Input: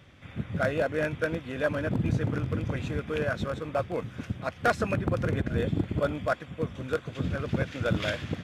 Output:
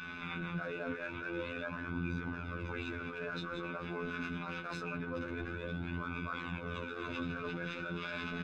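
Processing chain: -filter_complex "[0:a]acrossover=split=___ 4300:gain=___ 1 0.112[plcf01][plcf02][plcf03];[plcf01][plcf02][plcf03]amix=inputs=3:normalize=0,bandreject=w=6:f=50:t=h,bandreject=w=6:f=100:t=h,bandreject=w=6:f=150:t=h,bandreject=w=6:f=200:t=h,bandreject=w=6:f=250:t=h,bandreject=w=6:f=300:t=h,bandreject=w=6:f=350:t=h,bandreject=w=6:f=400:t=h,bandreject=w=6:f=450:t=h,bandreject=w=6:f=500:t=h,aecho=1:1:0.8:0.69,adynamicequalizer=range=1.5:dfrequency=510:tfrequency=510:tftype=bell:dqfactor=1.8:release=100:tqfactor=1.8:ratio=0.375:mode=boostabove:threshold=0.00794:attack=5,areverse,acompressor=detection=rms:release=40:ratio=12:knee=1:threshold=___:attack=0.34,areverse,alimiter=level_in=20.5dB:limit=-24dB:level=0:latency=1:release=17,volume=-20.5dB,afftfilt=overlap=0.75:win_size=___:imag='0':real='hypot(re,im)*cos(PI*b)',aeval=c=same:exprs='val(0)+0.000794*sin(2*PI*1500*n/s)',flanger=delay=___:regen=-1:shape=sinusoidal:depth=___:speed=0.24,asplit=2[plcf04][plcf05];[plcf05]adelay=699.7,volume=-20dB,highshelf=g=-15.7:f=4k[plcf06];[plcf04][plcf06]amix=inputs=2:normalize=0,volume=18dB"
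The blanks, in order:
230, 0.224, -40dB, 2048, 4.7, 6.1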